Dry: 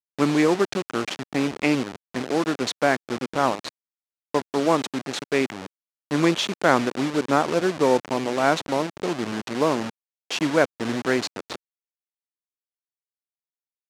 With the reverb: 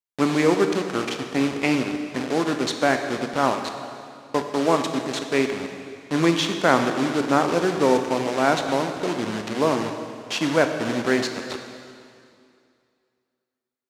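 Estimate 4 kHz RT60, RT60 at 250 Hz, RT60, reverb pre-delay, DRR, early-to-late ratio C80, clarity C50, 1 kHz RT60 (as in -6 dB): 2.2 s, 2.5 s, 2.4 s, 5 ms, 5.5 dB, 7.5 dB, 6.5 dB, 2.4 s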